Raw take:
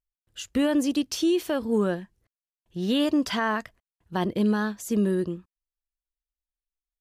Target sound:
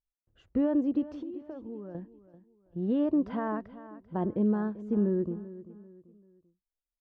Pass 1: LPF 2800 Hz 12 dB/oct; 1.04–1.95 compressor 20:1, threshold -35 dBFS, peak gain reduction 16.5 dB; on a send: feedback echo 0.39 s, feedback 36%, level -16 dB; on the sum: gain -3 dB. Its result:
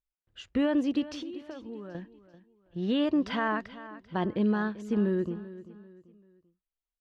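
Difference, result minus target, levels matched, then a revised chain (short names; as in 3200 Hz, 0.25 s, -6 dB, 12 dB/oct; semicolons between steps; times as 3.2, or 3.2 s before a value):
2000 Hz band +11.5 dB
LPF 810 Hz 12 dB/oct; 1.04–1.95 compressor 20:1, threshold -35 dBFS, peak gain reduction 16.5 dB; on a send: feedback echo 0.39 s, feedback 36%, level -16 dB; on the sum: gain -3 dB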